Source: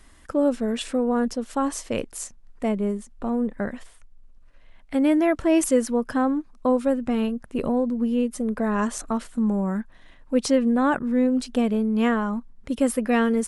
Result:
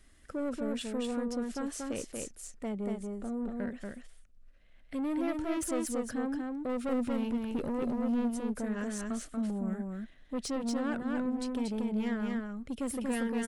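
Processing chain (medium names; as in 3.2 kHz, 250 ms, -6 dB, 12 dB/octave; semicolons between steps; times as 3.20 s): peaking EQ 960 Hz -11.5 dB 0.46 oct; 6.69–8.34 s: waveshaping leveller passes 1; saturation -21 dBFS, distortion -12 dB; on a send: delay 235 ms -3 dB; on the sum: trim -8.5 dB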